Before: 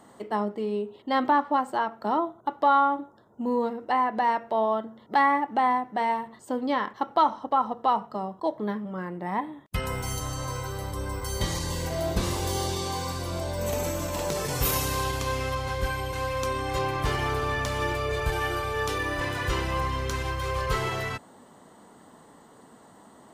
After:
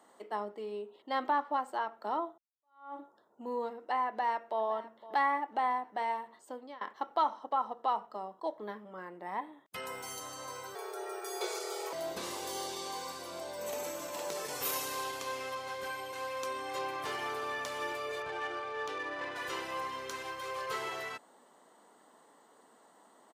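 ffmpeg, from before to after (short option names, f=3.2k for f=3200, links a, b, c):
-filter_complex "[0:a]asplit=2[a][b];[b]afade=t=in:st=4.08:d=0.01,afade=t=out:st=4.64:d=0.01,aecho=0:1:510|1020|1530|2040:0.141254|0.0706269|0.0353134|0.0176567[c];[a][c]amix=inputs=2:normalize=0,asettb=1/sr,asplit=3[d][e][f];[d]atrim=end=10.754[g];[e]atrim=start=10.75:end=11.93,asetpts=PTS-STARTPTS,afade=t=in:d=0.004:c=qsin,afade=t=out:st=1.176:d=0.004:c=qsin,afreqshift=320[h];[f]atrim=start=11.926[i];[g][h]acrossfade=d=0.004:c1=hsin:c2=qsin[j];[j][i]acrossfade=d=0.004:c1=qsin:c2=hsin,asettb=1/sr,asplit=3[k][l][m];[k]atrim=end=18.224[n];[l]atrim=start=18.22:end=19.36,asetpts=PTS-STARTPTS,afade=t=in:d=0.004:c=qsin,afade=t=out:st=1.136:d=0.004:c=qsin,adynamicsmooth=sensitivity=2.5:basefreq=2.8k[o];[m]atrim=start=19.356[p];[n][o]acrossfade=d=0.004:c1=hsin:c2=qsin[q];[q][p]acrossfade=d=0.004:c1=qsin:c2=hsin,asplit=3[r][s][t];[r]atrim=end=2.38,asetpts=PTS-STARTPTS,afade=t=out:st=2.376:d=0.004:c=hsin[u];[s]atrim=start=2.38:end=6.81,asetpts=PTS-STARTPTS,afade=t=in:d=0.59:c=exp,afade=t=out:st=3.98:d=0.45:silence=0.0794328[v];[t]atrim=start=6.81,asetpts=PTS-STARTPTS,afade=t=in:d=0.004:c=hsin:silence=0.0794328[w];[u][v][w]concat=n=3:v=0:a=1,highpass=380,volume=-7.5dB"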